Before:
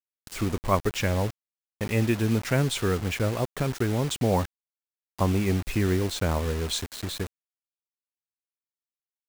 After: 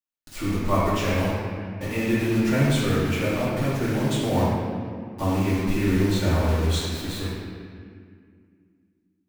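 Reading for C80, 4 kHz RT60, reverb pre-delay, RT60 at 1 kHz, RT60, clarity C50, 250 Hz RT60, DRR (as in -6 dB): 0.0 dB, 1.5 s, 3 ms, 2.0 s, 2.1 s, -2.5 dB, 3.1 s, -9.5 dB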